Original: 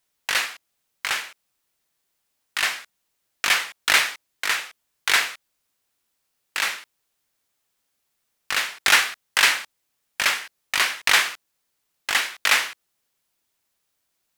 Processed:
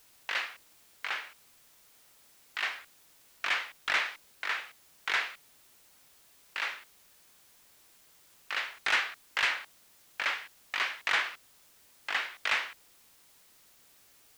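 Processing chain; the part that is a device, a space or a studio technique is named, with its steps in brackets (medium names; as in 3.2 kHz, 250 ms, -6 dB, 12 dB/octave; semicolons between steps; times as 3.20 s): tape answering machine (band-pass 340–3200 Hz; saturation -10 dBFS, distortion -18 dB; wow and flutter; white noise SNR 24 dB); trim -7.5 dB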